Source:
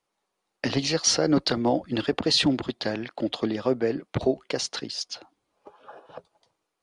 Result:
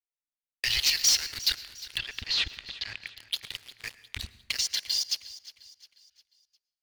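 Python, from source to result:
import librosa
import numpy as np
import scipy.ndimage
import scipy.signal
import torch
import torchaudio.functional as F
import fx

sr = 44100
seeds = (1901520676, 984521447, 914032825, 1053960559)

y = scipy.signal.sosfilt(scipy.signal.cheby2(4, 40, [140.0, 1100.0], 'bandstop', fs=sr, output='sos'), x)
y = fx.high_shelf(y, sr, hz=7300.0, db=3.0)
y = fx.level_steps(y, sr, step_db=9)
y = fx.leveller(y, sr, passes=5)
y = fx.air_absorb(y, sr, metres=150.0, at=(1.97, 3.06), fade=0.02)
y = fx.notch_comb(y, sr, f0_hz=1300.0, at=(4.61, 5.1))
y = fx.echo_feedback(y, sr, ms=355, feedback_pct=44, wet_db=-17.5)
y = fx.rev_plate(y, sr, seeds[0], rt60_s=0.95, hf_ratio=0.55, predelay_ms=95, drr_db=17.0)
y = y * 10.0 ** (-7.5 / 20.0)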